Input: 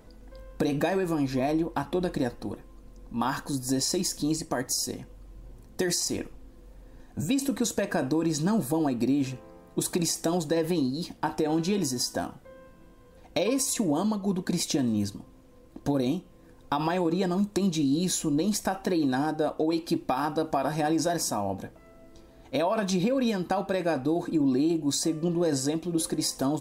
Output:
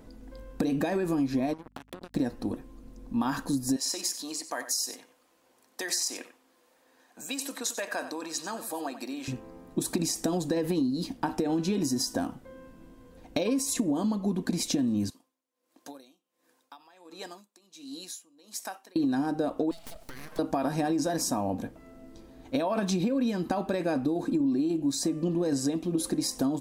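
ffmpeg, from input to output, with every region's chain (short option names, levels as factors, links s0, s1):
-filter_complex "[0:a]asettb=1/sr,asplit=3[s0][s1][s2];[s0]atrim=end=1.534[s3];[s1]atrim=start=1.53:end=2.15,asetpts=PTS-STARTPTS,afade=t=in:d=0.004:c=qsin,afade=t=out:st=0.616:d=0.004:c=qsin,acompressor=threshold=0.0126:ratio=20:attack=3.2:release=140:knee=1:detection=peak,acrusher=bits=5:mix=0:aa=0.5,aeval=exprs='val(0)+0.000708*(sin(2*PI*50*n/s)+sin(2*PI*2*50*n/s)/2+sin(2*PI*3*50*n/s)/3+sin(2*PI*4*50*n/s)/4+sin(2*PI*5*50*n/s)/5)':c=same[s4];[s2]atrim=start=2.146[s5];[s3][s4]acrossfade=d=0.004:c1=hsin:c2=qsin[s6];[s6][s5]acrossfade=d=0.004:c1=qsin:c2=hsin,asettb=1/sr,asplit=3[s7][s8][s9];[s7]atrim=end=3.764[s10];[s8]atrim=start=3.76:end=9.28,asetpts=PTS-STARTPTS,afade=t=in:d=0.004:c=qsin,afade=t=out:st=5.516:d=0.004:c=qsin,highpass=810,aecho=1:1:93:0.237,atrim=end_sample=243432[s11];[s9]atrim=start=9.276[s12];[s10][s11]acrossfade=d=0.004:c1=hsin:c2=qsin[s13];[s13][s12]acrossfade=d=0.004:c1=qsin:c2=hsin,asettb=1/sr,asplit=3[s14][s15][s16];[s14]atrim=end=15.104[s17];[s15]atrim=start=15.1:end=18.96,asetpts=PTS-STARTPTS,afade=t=in:d=0.004:c=qsin,afade=t=out:st=3.856:d=0.004:c=qsin,highpass=890,equalizer=f=1400:w=0.35:g=-6,aeval=exprs='val(0)*pow(10,-21*(0.5-0.5*cos(2*PI*1.4*n/s))/20)':c=same[s18];[s16]atrim=start=18.956[s19];[s17][s18]acrossfade=d=0.004:c1=hsin:c2=qsin[s20];[s20][s19]acrossfade=d=0.004:c1=qsin:c2=hsin,asettb=1/sr,asplit=3[s21][s22][s23];[s21]atrim=end=19.714[s24];[s22]atrim=start=19.71:end=20.39,asetpts=PTS-STARTPTS,afade=t=in:d=0.004:c=qsin,afade=t=out:st=0.676:d=0.004:c=qsin,bass=f=250:g=-12,treble=f=4000:g=11,aeval=exprs='abs(val(0))':c=same,acompressor=threshold=0.0126:ratio=8:attack=3.2:release=140:knee=1:detection=peak[s25];[s23]atrim=start=20.386[s26];[s24][s25]acrossfade=d=0.004:c1=hsin:c2=qsin[s27];[s27][s26]acrossfade=d=0.004:c1=qsin:c2=hsin,equalizer=f=260:w=2.6:g=7.5,acompressor=threshold=0.0631:ratio=6"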